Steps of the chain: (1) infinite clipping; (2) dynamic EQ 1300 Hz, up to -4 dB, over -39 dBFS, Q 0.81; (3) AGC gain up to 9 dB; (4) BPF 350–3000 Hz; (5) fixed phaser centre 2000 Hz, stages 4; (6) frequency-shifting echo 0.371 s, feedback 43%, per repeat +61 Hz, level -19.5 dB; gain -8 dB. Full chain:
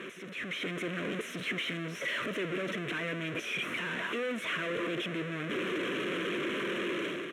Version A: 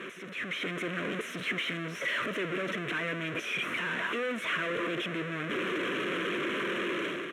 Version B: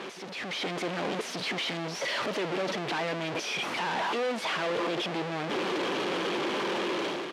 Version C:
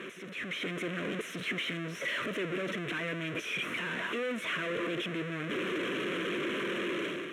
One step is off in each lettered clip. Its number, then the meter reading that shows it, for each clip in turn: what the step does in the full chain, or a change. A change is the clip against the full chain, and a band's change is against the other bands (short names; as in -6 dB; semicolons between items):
2, 1 kHz band +3.0 dB; 5, 1 kHz band +6.5 dB; 6, echo-to-direct -18.5 dB to none